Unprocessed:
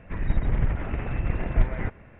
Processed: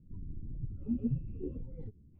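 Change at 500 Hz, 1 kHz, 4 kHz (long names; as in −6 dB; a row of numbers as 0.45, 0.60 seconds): −11.0 dB, below −35 dB, can't be measured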